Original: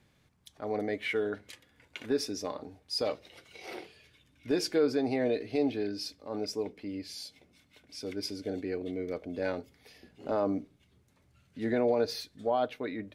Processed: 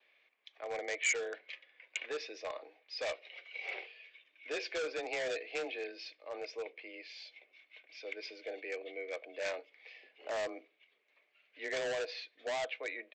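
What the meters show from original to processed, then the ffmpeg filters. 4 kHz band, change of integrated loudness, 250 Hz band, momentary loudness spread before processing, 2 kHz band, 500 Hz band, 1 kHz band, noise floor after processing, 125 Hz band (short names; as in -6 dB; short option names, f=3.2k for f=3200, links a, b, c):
-4.5 dB, -6.5 dB, -20.0 dB, 17 LU, +3.0 dB, -8.0 dB, -7.5 dB, -75 dBFS, under -20 dB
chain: -af "adynamicequalizer=threshold=0.00126:dfrequency=2100:dqfactor=5.7:tfrequency=2100:tqfactor=5.7:attack=5:release=100:ratio=0.375:range=2:mode=cutabove:tftype=bell,afreqshift=24,highpass=f=500:w=0.5412,highpass=f=500:w=1.3066,equalizer=f=890:t=q:w=4:g=-8,equalizer=f=1.4k:t=q:w=4:g=-8,equalizer=f=2.3k:t=q:w=4:g=6,lowpass=f=2.8k:w=0.5412,lowpass=f=2.8k:w=1.3066,aresample=16000,asoftclip=type=hard:threshold=-33dB,aresample=44100,crystalizer=i=5.5:c=0,volume=-2dB"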